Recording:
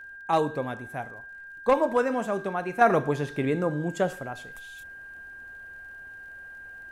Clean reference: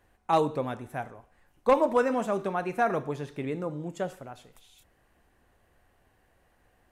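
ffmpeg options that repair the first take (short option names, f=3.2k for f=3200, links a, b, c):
-af "adeclick=t=4,bandreject=f=1.6k:w=30,asetnsamples=n=441:p=0,asendcmd='2.81 volume volume -6.5dB',volume=0dB"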